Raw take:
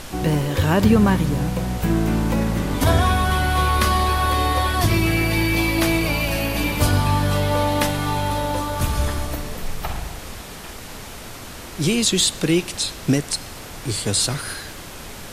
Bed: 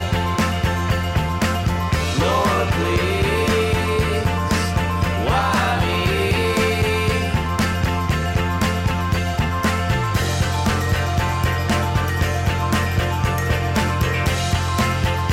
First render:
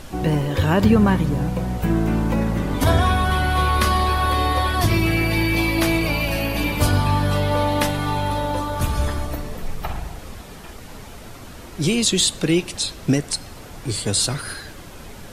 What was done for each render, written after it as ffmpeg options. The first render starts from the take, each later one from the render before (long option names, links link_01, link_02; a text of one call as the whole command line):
ffmpeg -i in.wav -af "afftdn=noise_reduction=7:noise_floor=-36" out.wav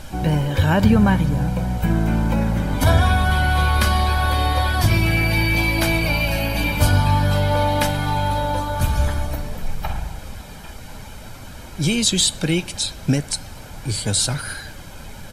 ffmpeg -i in.wav -af "bandreject=frequency=700:width=12,aecho=1:1:1.3:0.46" out.wav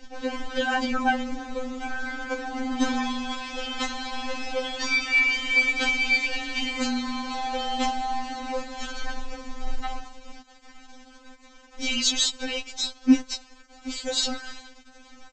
ffmpeg -i in.wav -af "aresample=16000,aeval=exprs='sgn(val(0))*max(abs(val(0))-0.0211,0)':channel_layout=same,aresample=44100,afftfilt=real='re*3.46*eq(mod(b,12),0)':imag='im*3.46*eq(mod(b,12),0)':win_size=2048:overlap=0.75" out.wav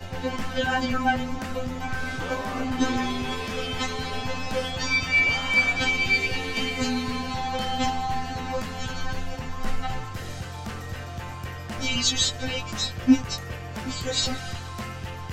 ffmpeg -i in.wav -i bed.wav -filter_complex "[1:a]volume=-15.5dB[link_01];[0:a][link_01]amix=inputs=2:normalize=0" out.wav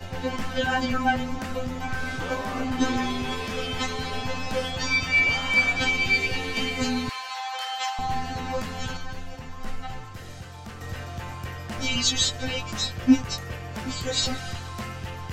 ffmpeg -i in.wav -filter_complex "[0:a]asettb=1/sr,asplit=3[link_01][link_02][link_03];[link_01]atrim=end=7.094[link_04];[link_02]atrim=start=7.09:end=7.99,asetpts=PTS-STARTPTS,afade=type=in:duration=0.004:curve=qsin,afade=type=out:start_time=0.896:duration=0.004:curve=qsin,highpass=frequency=780:width=0.5412,highpass=frequency=780:width=1.3066[link_05];[link_03]atrim=start=7.986[link_06];[link_04][link_05]acrossfade=duration=0.004:curve1=hsin:curve2=qsin[link_07];[link_07][link_06]acrossfade=duration=0.004:curve1=qsin:curve2=hsin,asplit=3[link_08][link_09][link_10];[link_08]atrim=end=8.972[link_11];[link_09]atrim=start=8.968:end=10.812,asetpts=PTS-STARTPTS,volume=-5.5dB[link_12];[link_10]atrim=start=10.808[link_13];[link_11][link_12]acrossfade=duration=0.004:curve1=hsin:curve2=hsin[link_14];[link_14][link_13]acrossfade=duration=0.004:curve1=hsin:curve2=hsin" out.wav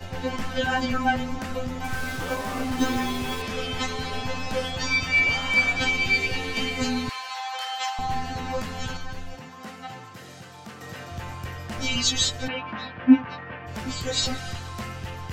ffmpeg -i in.wav -filter_complex "[0:a]asettb=1/sr,asplit=3[link_01][link_02][link_03];[link_01]atrim=end=1.844[link_04];[link_02]atrim=start=1.84:end=3.42,asetpts=PTS-STARTPTS,afade=type=in:duration=0.004:curve=qsin,afade=type=out:start_time=1.576:duration=0.004:curve=qsin,acrusher=bits=5:mix=0:aa=0.5[link_05];[link_03]atrim=start=3.416[link_06];[link_04][link_05]acrossfade=duration=0.004:curve1=hsin:curve2=qsin[link_07];[link_07][link_06]acrossfade=duration=0.004:curve1=qsin:curve2=hsin,asettb=1/sr,asplit=3[link_08][link_09][link_10];[link_08]atrim=end=9.384[link_11];[link_09]atrim=start=9.38:end=11.11,asetpts=PTS-STARTPTS,afade=type=in:duration=0.004:curve=qsin,afade=type=out:start_time=1.726:duration=0.004:curve=qsin,highpass=frequency=130:width=0.5412,highpass=frequency=130:width=1.3066[link_12];[link_10]atrim=start=11.106[link_13];[link_11][link_12]acrossfade=duration=0.004:curve1=hsin:curve2=qsin[link_14];[link_14][link_13]acrossfade=duration=0.004:curve1=qsin:curve2=hsin,asplit=3[link_15][link_16][link_17];[link_15]afade=type=out:start_time=12.47:duration=0.02[link_18];[link_16]highpass=170,equalizer=frequency=260:width_type=q:width=4:gain=4,equalizer=frequency=390:width_type=q:width=4:gain=-6,equalizer=frequency=950:width_type=q:width=4:gain=6,equalizer=frequency=1600:width_type=q:width=4:gain=4,lowpass=frequency=2800:width=0.5412,lowpass=frequency=2800:width=1.3066,afade=type=in:start_time=12.47:duration=0.02,afade=type=out:start_time=13.66:duration=0.02[link_19];[link_17]afade=type=in:start_time=13.66:duration=0.02[link_20];[link_18][link_19][link_20]amix=inputs=3:normalize=0" out.wav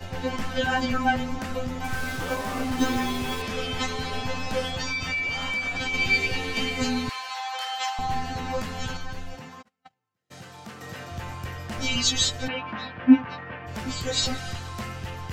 ffmpeg -i in.wav -filter_complex "[0:a]asettb=1/sr,asplit=3[link_01][link_02][link_03];[link_01]atrim=end=4.764[link_04];[link_02]atrim=start=4.76:end=5.94,asetpts=PTS-STARTPTS,afade=type=in:duration=0.004:curve=qsin,afade=type=out:start_time=1.176:duration=0.004:curve=qsin,acompressor=threshold=-25dB:ratio=6:attack=3.2:release=140:knee=1:detection=peak[link_05];[link_03]atrim=start=5.936[link_06];[link_04][link_05]acrossfade=duration=0.004:curve1=hsin:curve2=qsin[link_07];[link_07][link_06]acrossfade=duration=0.004:curve1=qsin:curve2=hsin,asplit=3[link_08][link_09][link_10];[link_08]afade=type=out:start_time=9.61:duration=0.02[link_11];[link_09]agate=range=-41dB:threshold=-34dB:ratio=16:release=100:detection=peak,afade=type=in:start_time=9.61:duration=0.02,afade=type=out:start_time=10.3:duration=0.02[link_12];[link_10]afade=type=in:start_time=10.3:duration=0.02[link_13];[link_11][link_12][link_13]amix=inputs=3:normalize=0" out.wav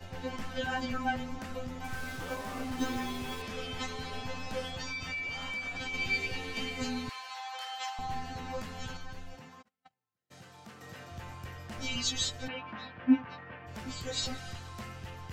ffmpeg -i in.wav -af "volume=-9dB" out.wav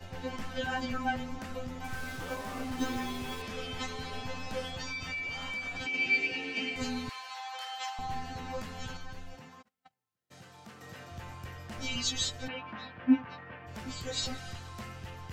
ffmpeg -i in.wav -filter_complex "[0:a]asettb=1/sr,asplit=3[link_01][link_02][link_03];[link_01]atrim=end=5.864[link_04];[link_02]atrim=start=5.86:end=6.76,asetpts=PTS-STARTPTS,afade=type=in:duration=0.004:curve=qsin,afade=type=out:start_time=0.896:duration=0.004:curve=qsin,highpass=220,equalizer=frequency=290:width_type=q:width=4:gain=8,equalizer=frequency=1100:width_type=q:width=4:gain=-9,equalizer=frequency=2600:width_type=q:width=4:gain=9,equalizer=frequency=3700:width_type=q:width=4:gain=-6,equalizer=frequency=6700:width_type=q:width=4:gain=-5,lowpass=frequency=7500:width=0.5412,lowpass=frequency=7500:width=1.3066[link_05];[link_03]atrim=start=6.756[link_06];[link_04][link_05]acrossfade=duration=0.004:curve1=hsin:curve2=qsin[link_07];[link_07][link_06]acrossfade=duration=0.004:curve1=qsin:curve2=hsin" out.wav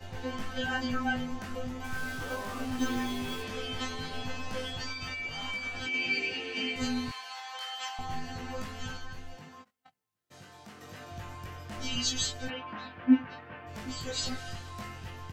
ffmpeg -i in.wav -filter_complex "[0:a]asplit=2[link_01][link_02];[link_02]adelay=20,volume=-3.5dB[link_03];[link_01][link_03]amix=inputs=2:normalize=0" out.wav